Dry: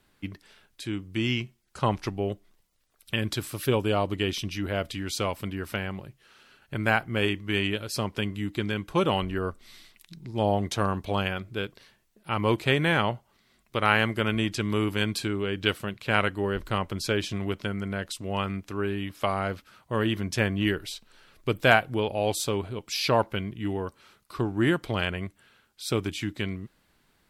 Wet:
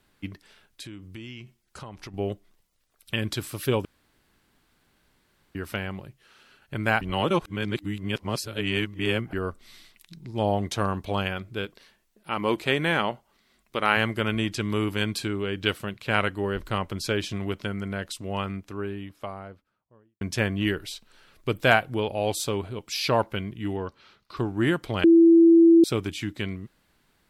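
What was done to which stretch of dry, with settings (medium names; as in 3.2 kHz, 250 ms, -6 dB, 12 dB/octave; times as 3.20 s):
0.82–2.14 s: compression 8:1, threshold -37 dBFS
3.85–5.55 s: room tone
7.01–9.33 s: reverse
11.65–13.97 s: peaking EQ 110 Hz -12 dB 0.58 oct
18.07–20.21 s: studio fade out
23.76–24.37 s: resonant high shelf 6.4 kHz -11.5 dB, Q 1.5
25.04–25.84 s: bleep 333 Hz -11 dBFS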